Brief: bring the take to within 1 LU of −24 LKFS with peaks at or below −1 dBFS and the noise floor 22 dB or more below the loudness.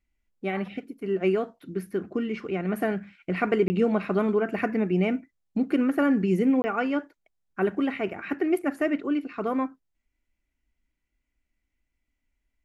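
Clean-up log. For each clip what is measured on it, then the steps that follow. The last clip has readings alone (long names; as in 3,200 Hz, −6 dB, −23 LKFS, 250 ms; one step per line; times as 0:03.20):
number of dropouts 2; longest dropout 20 ms; integrated loudness −27.0 LKFS; sample peak −11.5 dBFS; target loudness −24.0 LKFS
→ repair the gap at 0:03.68/0:06.62, 20 ms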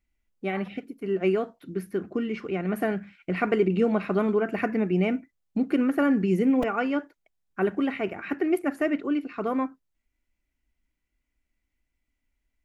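number of dropouts 0; integrated loudness −27.0 LKFS; sample peak −11.5 dBFS; target loudness −24.0 LKFS
→ level +3 dB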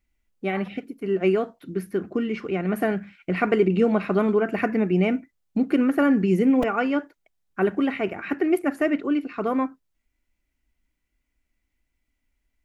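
integrated loudness −24.0 LKFS; sample peak −8.5 dBFS; background noise floor −78 dBFS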